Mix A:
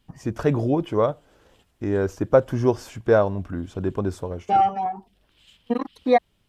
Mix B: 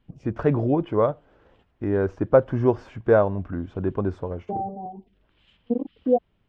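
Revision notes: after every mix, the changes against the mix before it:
second voice: add inverse Chebyshev low-pass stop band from 1.5 kHz, stop band 50 dB; master: add low-pass 2.2 kHz 12 dB/octave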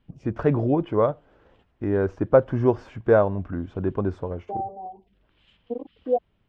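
second voice: add high-pass 450 Hz 12 dB/octave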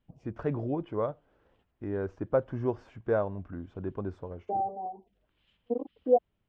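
first voice -10.0 dB

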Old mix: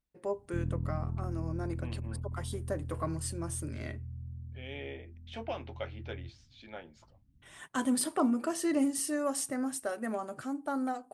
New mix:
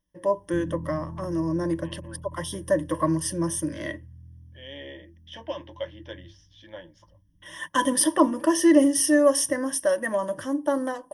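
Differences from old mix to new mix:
first voice +7.0 dB; master: add rippled EQ curve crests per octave 1.2, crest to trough 17 dB

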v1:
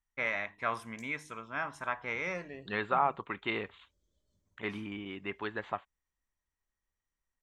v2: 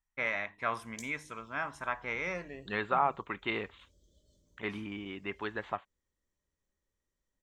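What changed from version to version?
background +11.5 dB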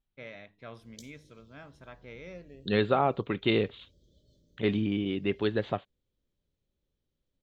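first voice -9.5 dB; second voice +7.0 dB; master: add graphic EQ 125/250/500/1000/2000/4000/8000 Hz +9/+3/+6/-11/-6/+8/-10 dB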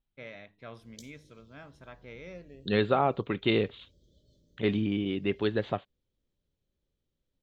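no change

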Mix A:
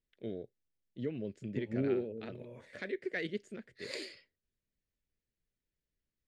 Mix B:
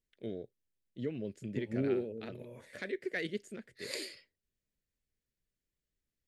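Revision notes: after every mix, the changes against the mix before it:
master: remove distance through air 73 m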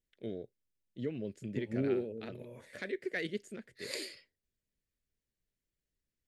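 no change

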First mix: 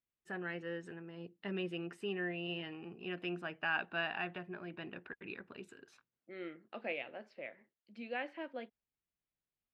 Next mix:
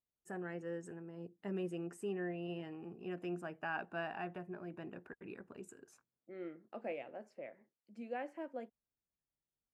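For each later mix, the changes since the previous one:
master: add FFT filter 750 Hz 0 dB, 3.9 kHz -15 dB, 7.1 kHz +9 dB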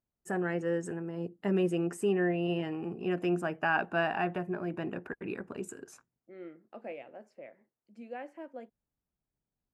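first voice +11.5 dB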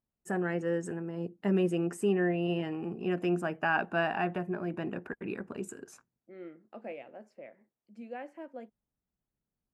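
master: add peaking EQ 210 Hz +3.5 dB 0.34 oct

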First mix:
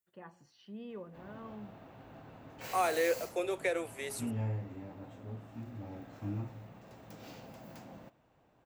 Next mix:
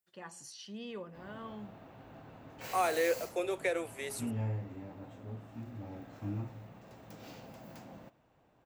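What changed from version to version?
first voice: remove tape spacing loss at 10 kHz 37 dB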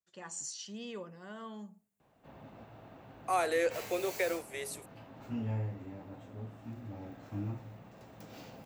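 first voice: add resonant low-pass 7.2 kHz, resonance Q 5.3; second voice: entry +0.55 s; background: entry +1.10 s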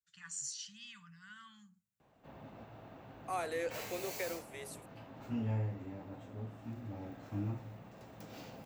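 first voice: add Chebyshev band-stop 150–1400 Hz, order 3; second voice -7.5 dB

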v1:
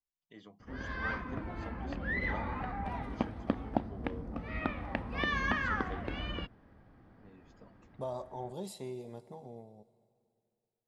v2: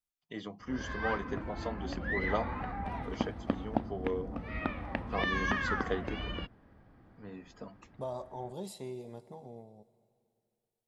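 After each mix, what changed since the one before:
first voice +12.0 dB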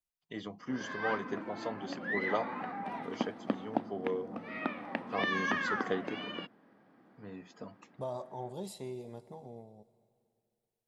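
background: add high-pass 190 Hz 24 dB/octave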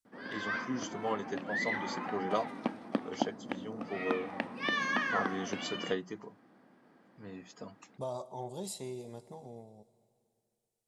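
background: entry -0.55 s; master: add peaking EQ 7.6 kHz +9 dB 1.5 oct

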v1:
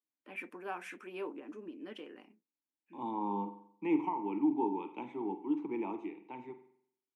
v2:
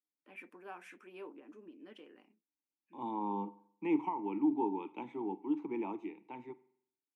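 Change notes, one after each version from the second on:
first voice -7.5 dB; second voice: send -8.5 dB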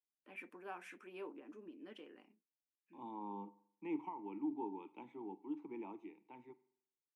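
second voice -9.5 dB

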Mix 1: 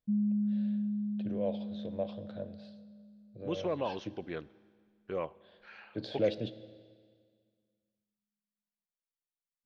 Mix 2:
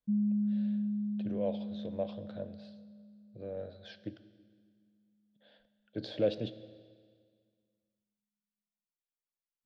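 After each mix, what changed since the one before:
second voice: muted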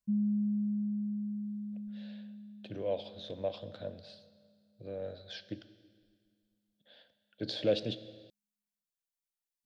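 speech: entry +1.45 s; background: send off; master: add treble shelf 2.8 kHz +11.5 dB

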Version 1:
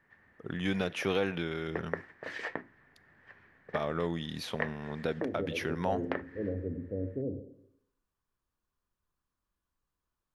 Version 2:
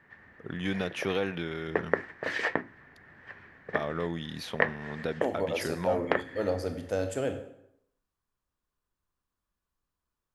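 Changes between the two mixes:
second voice: remove inverse Chebyshev low-pass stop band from 1.4 kHz, stop band 60 dB; background +8.5 dB

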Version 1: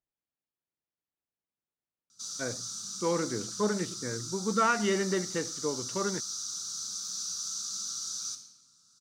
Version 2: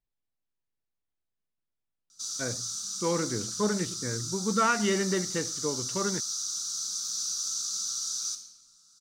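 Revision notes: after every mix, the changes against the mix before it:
speech: remove high-pass 340 Hz 6 dB/octave; master: add tilt EQ +1.5 dB/octave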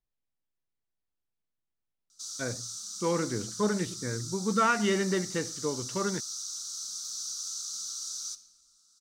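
background: send -10.5 dB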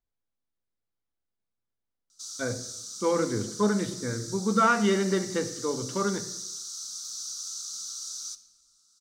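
speech: send on

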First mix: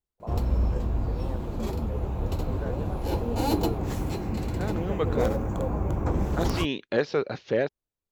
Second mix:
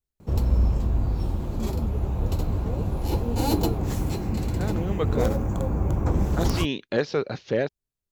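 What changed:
first voice: muted; master: add tone controls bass +4 dB, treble +5 dB

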